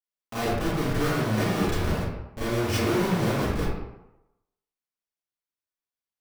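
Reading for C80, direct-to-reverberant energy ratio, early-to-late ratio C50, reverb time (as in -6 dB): 1.0 dB, -12.0 dB, -3.0 dB, 0.90 s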